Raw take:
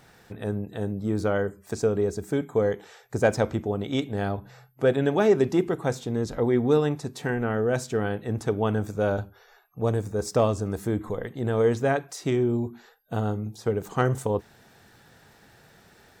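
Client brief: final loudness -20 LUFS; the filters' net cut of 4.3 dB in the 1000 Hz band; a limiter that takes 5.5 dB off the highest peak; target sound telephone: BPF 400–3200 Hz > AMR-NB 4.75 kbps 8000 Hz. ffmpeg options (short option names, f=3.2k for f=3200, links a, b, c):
-af "equalizer=f=1k:t=o:g=-6,alimiter=limit=-16dB:level=0:latency=1,highpass=400,lowpass=3.2k,volume=13dB" -ar 8000 -c:a libopencore_amrnb -b:a 4750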